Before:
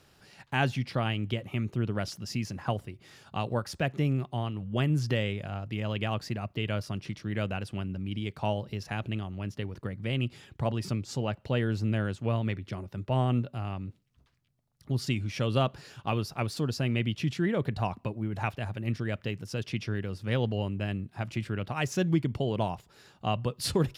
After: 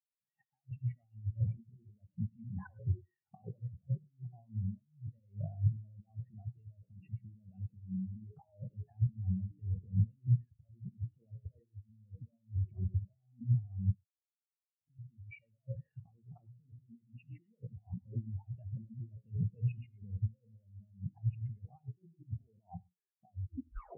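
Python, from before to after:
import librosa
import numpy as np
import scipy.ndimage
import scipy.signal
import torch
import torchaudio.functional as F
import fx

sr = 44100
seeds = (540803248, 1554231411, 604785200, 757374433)

y = fx.tape_stop_end(x, sr, length_s=0.69)
y = fx.hum_notches(y, sr, base_hz=60, count=9)
y = fx.over_compress(y, sr, threshold_db=-41.0, ratio=-1.0)
y = scipy.signal.sosfilt(scipy.signal.cheby1(6, 3, 2900.0, 'lowpass', fs=sr, output='sos'), y)
y = fx.rev_gated(y, sr, seeds[0], gate_ms=140, shape='rising', drr_db=6.5)
y = fx.spectral_expand(y, sr, expansion=4.0)
y = y * librosa.db_to_amplitude(4.0)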